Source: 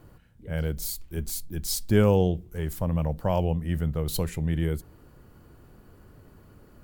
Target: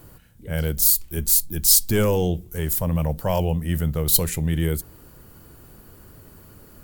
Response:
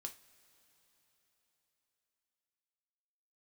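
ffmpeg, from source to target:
-af "apsyclip=17.5dB,crystalizer=i=2.5:c=0,volume=-13.5dB"

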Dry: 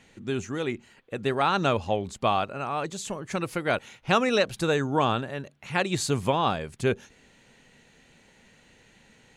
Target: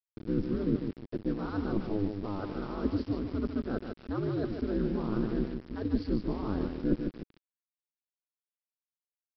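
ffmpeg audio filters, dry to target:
-af "areverse,acompressor=threshold=-34dB:ratio=10,areverse,aeval=exprs='val(0)*sin(2*PI*100*n/s)':c=same,asuperstop=centerf=2700:order=8:qfactor=0.96,aecho=1:1:148|296|444|592|740:0.501|0.21|0.0884|0.0371|0.0156,aresample=11025,aeval=exprs='val(0)*gte(abs(val(0)),0.00473)':c=same,aresample=44100,lowshelf=f=460:t=q:w=1.5:g=11.5"

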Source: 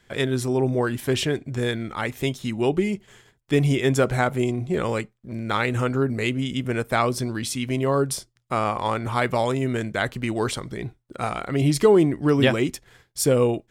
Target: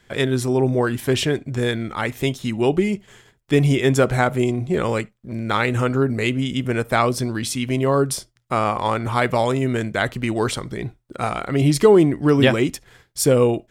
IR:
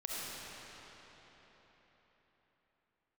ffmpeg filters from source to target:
-filter_complex "[0:a]asplit=2[a][b];[1:a]atrim=start_sample=2205,atrim=end_sample=3528,highshelf=f=4.2k:g=-11.5[c];[b][c]afir=irnorm=-1:irlink=0,volume=-15.5dB[d];[a][d]amix=inputs=2:normalize=0,volume=2.5dB"

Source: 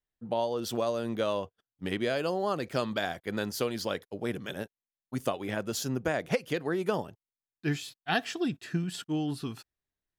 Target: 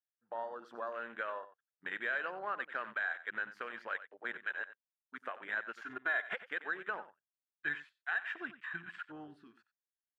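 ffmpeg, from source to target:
-filter_complex "[0:a]bandpass=f=1.6k:t=q:w=4.9:csg=0,alimiter=level_in=10dB:limit=-24dB:level=0:latency=1:release=102,volume=-10dB,afwtdn=0.002,asettb=1/sr,asplit=3[a][b][c];[a]atrim=end=5.854[d];[b]atrim=start=5.85:end=6.33,asetpts=PTS-STARTPTS,afade=t=in:d=0.004:c=qsin,afade=t=out:st=0.476:d=0.004:c=qsin,aecho=1:1:2.9:0.83,atrim=end_sample=21168[e];[c]atrim=start=6.326[f];[d][e]acrossfade=d=0.004:c1=hsin:c2=qsin[g];[g][f]acrossfade=d=0.004:c1=qsin:c2=hsin,aecho=1:1:91:0.188,volume=8.5dB"

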